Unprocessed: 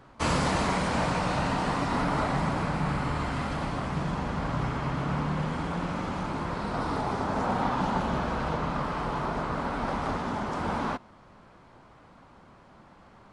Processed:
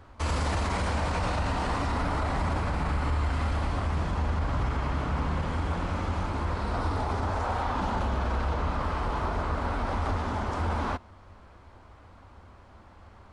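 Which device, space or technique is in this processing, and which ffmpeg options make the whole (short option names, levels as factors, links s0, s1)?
car stereo with a boomy subwoofer: -filter_complex "[0:a]asettb=1/sr,asplit=3[s0][s1][s2];[s0]atrim=end=7.304[s3];[s1]atrim=start=7.3:end=7.7,asetpts=PTS-STARTPTS,afade=t=in:d=0.004:c=qsin,afade=t=out:st=0.396:d=0.004:c=qsin,equalizer=f=190:w=0.84:g=-8.5[s4];[s2]atrim=start=7.696[s5];[s3][s4]acrossfade=d=0.004:c1=hsin:c2=qsin[s6];[s6][s5]acrossfade=d=0.004:c1=qsin:c2=hsin,lowshelf=f=110:t=q:w=3:g=7.5,alimiter=limit=0.1:level=0:latency=1:release=22"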